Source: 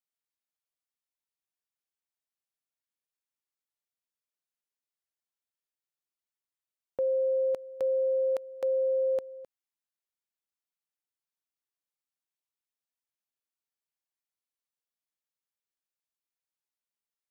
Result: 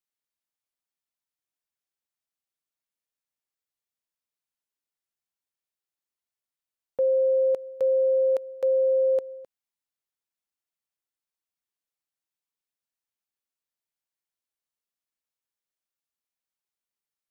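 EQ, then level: dynamic EQ 490 Hz, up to +6 dB, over -42 dBFS; 0.0 dB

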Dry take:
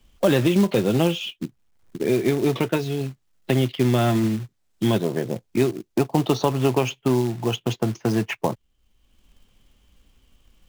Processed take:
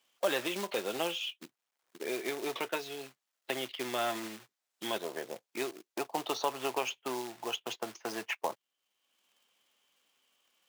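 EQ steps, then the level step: HPF 650 Hz 12 dB/oct; -6.0 dB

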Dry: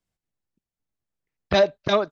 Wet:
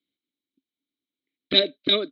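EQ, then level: vowel filter i; synth low-pass 3900 Hz, resonance Q 12; band shelf 650 Hz +9.5 dB 2.4 oct; +8.0 dB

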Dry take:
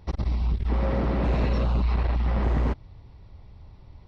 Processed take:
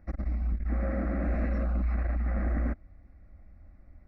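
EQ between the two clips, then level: bell 990 Hz -4 dB 1.7 oct; resonant high shelf 2900 Hz -11 dB, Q 1.5; fixed phaser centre 630 Hz, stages 8; -2.0 dB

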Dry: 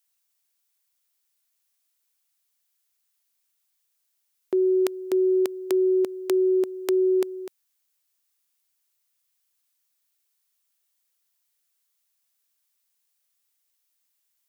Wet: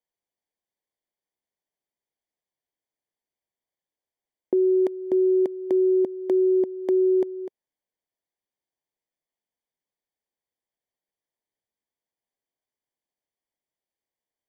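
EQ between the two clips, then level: dynamic EQ 410 Hz, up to -7 dB, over -38 dBFS, Q 4.8; running mean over 33 samples; +6.0 dB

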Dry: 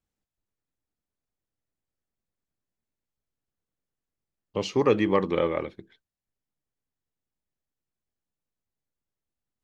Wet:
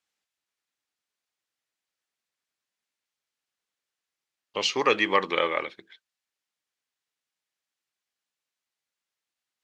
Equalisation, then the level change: band-pass 1900 Hz, Q 0.53; high shelf 2000 Hz +11 dB; +3.5 dB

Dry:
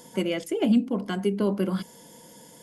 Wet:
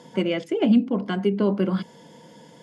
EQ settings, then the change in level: HPF 79 Hz; LPF 4000 Hz 12 dB/oct; bell 150 Hz +4 dB 0.26 oct; +3.0 dB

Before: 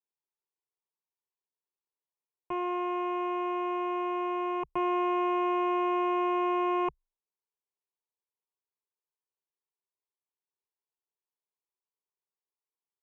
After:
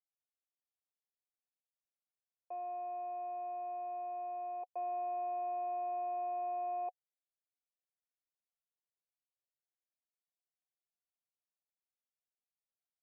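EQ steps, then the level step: vocal tract filter a; vowel filter e; HPF 390 Hz; +17.0 dB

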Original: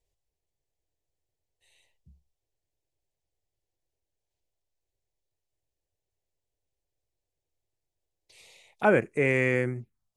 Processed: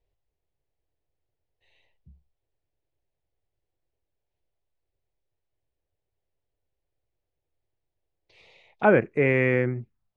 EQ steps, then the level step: air absorption 270 m; +4.0 dB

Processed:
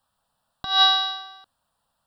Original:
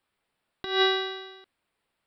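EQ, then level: notch 2500 Hz, Q 28; dynamic EQ 4100 Hz, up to +6 dB, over -41 dBFS, Q 1.2; fixed phaser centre 900 Hz, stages 4; +8.5 dB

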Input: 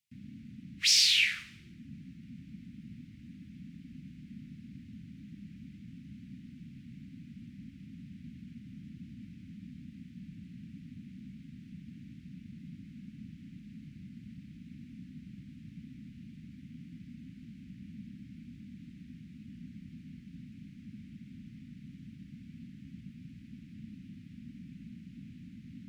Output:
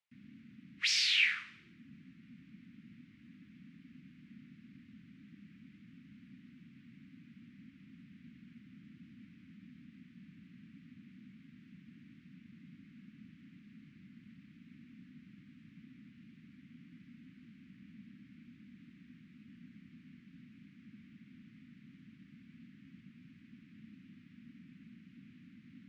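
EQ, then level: band-pass 1000 Hz, Q 1.1; +6.5 dB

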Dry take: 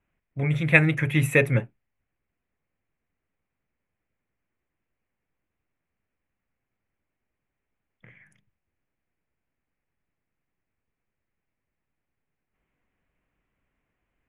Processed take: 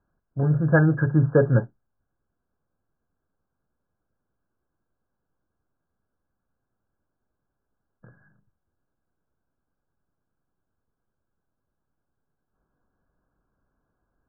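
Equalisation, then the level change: brick-wall FIR low-pass 1700 Hz; +3.5 dB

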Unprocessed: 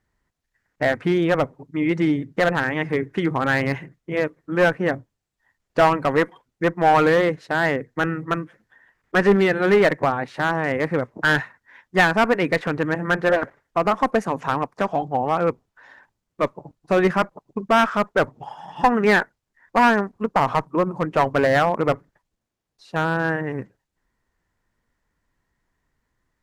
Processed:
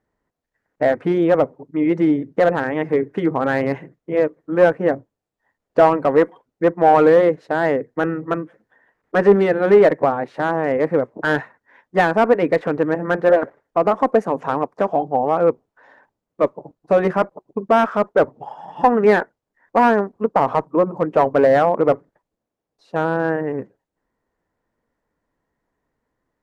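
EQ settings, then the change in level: bell 460 Hz +15 dB 2.8 oct; notch 370 Hz, Q 12; -8.5 dB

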